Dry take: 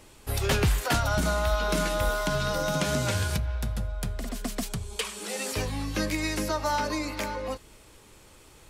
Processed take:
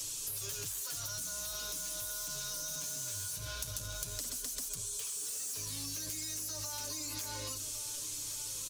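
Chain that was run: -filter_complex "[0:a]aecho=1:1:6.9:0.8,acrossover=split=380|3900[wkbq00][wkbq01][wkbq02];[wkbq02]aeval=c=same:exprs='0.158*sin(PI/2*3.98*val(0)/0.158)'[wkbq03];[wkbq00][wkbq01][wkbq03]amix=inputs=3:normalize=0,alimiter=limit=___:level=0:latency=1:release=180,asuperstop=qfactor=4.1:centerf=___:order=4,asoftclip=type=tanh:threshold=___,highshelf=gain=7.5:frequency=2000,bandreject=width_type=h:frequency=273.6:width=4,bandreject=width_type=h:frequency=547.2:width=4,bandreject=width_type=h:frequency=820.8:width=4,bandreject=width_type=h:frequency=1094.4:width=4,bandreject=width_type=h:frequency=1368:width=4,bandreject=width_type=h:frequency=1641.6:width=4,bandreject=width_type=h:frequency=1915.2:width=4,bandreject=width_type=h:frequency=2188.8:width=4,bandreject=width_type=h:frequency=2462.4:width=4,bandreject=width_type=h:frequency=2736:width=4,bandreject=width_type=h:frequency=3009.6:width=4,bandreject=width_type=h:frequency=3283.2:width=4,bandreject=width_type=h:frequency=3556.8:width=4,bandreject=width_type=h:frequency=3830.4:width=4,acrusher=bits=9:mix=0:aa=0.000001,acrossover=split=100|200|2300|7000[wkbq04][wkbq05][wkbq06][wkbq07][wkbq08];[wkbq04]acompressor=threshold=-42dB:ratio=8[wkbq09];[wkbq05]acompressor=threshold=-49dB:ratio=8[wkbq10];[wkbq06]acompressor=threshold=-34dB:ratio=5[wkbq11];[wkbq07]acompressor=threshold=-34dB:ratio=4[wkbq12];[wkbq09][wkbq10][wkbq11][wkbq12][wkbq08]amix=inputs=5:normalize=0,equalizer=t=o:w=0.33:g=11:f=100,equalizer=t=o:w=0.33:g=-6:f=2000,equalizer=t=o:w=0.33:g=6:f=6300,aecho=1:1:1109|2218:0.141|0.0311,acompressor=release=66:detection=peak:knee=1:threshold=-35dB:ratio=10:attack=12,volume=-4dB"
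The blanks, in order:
-14.5dB, 770, -24.5dB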